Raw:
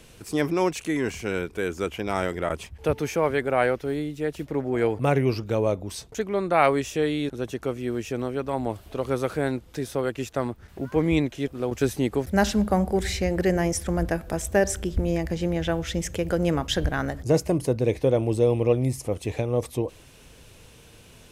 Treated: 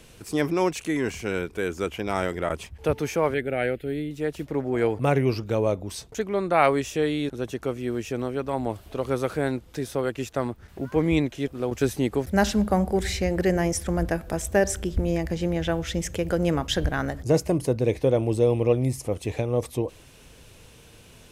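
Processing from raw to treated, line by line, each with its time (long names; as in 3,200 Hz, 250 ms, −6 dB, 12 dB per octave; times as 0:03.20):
0:03.34–0:04.11: phaser with its sweep stopped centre 2,500 Hz, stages 4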